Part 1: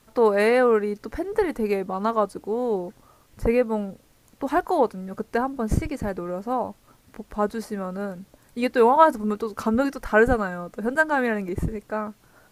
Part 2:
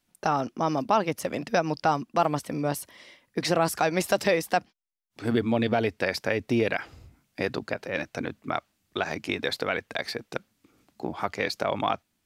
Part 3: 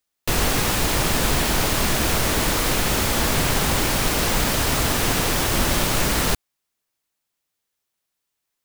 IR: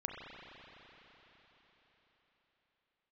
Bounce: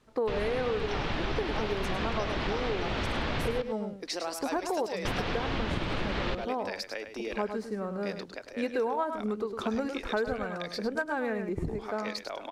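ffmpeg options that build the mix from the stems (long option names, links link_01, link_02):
-filter_complex "[0:a]equalizer=frequency=420:width=1.5:gain=4,adynamicsmooth=sensitivity=6:basefreq=6900,volume=-6dB,asplit=2[link_01][link_02];[link_02]volume=-9.5dB[link_03];[1:a]highpass=frequency=280:width=0.5412,highpass=frequency=280:width=1.3066,equalizer=frequency=5400:width_type=o:width=1.3:gain=8,adelay=650,volume=-11.5dB,asplit=2[link_04][link_05];[link_05]volume=-9dB[link_06];[2:a]lowpass=frequency=3800:width=0.5412,lowpass=frequency=3800:width=1.3066,volume=-5dB,asplit=3[link_07][link_08][link_09];[link_07]atrim=end=3.62,asetpts=PTS-STARTPTS,afade=type=out:start_time=3.616:duration=0.004:curve=hsin[link_10];[link_08]atrim=start=3.62:end=5.05,asetpts=PTS-STARTPTS,volume=0[link_11];[link_09]atrim=start=5.05,asetpts=PTS-STARTPTS,afade=type=in:duration=0.004:curve=hsin[link_12];[link_10][link_11][link_12]concat=n=3:v=0:a=1,asplit=2[link_13][link_14];[link_14]volume=-15.5dB[link_15];[link_03][link_06][link_15]amix=inputs=3:normalize=0,aecho=0:1:104:1[link_16];[link_01][link_04][link_13][link_16]amix=inputs=4:normalize=0,acompressor=threshold=-27dB:ratio=6"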